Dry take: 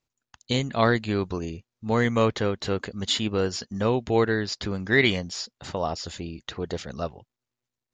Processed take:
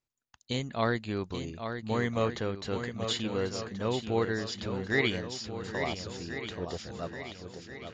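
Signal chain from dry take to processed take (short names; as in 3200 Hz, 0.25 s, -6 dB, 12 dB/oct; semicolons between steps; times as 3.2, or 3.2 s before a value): swung echo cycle 1.385 s, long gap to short 1.5:1, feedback 42%, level -8 dB; gain -7.5 dB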